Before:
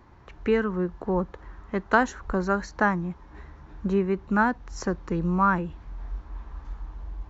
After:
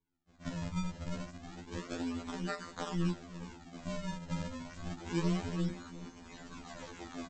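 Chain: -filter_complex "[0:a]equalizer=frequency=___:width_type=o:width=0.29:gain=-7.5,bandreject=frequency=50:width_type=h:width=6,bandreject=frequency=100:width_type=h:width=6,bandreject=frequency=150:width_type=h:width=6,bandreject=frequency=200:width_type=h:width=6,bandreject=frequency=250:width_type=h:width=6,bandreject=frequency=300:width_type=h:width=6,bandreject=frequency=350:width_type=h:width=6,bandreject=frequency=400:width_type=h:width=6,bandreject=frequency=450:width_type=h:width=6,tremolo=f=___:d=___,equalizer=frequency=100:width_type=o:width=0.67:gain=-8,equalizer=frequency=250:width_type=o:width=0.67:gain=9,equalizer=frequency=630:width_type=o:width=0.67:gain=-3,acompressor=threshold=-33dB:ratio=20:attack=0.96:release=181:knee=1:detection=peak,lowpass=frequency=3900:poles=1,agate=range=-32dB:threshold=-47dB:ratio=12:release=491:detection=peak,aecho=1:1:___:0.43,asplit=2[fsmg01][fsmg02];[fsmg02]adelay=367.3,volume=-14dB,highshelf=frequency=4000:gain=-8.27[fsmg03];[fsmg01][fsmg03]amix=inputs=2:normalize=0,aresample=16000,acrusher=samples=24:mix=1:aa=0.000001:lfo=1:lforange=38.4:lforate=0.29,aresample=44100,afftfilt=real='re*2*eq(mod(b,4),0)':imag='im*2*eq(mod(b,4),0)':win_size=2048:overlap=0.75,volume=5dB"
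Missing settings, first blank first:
150, 170, 0.947, 6.6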